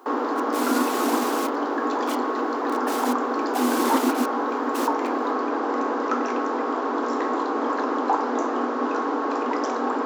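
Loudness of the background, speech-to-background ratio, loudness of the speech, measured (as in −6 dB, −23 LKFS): −25.0 LKFS, −4.0 dB, −29.0 LKFS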